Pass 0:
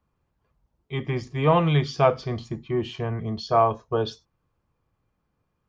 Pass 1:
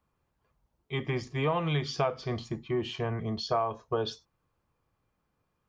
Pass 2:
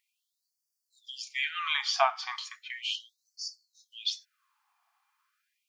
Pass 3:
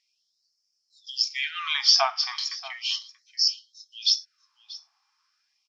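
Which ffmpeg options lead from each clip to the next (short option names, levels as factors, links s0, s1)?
-af "lowshelf=f=320:g=-5,acompressor=threshold=0.0562:ratio=6"
-af "afftfilt=real='re*gte(b*sr/1024,680*pow(4500/680,0.5+0.5*sin(2*PI*0.36*pts/sr)))':imag='im*gte(b*sr/1024,680*pow(4500/680,0.5+0.5*sin(2*PI*0.36*pts/sr)))':win_size=1024:overlap=0.75,volume=2.51"
-af "lowpass=f=5300:t=q:w=11,aecho=1:1:633:0.112"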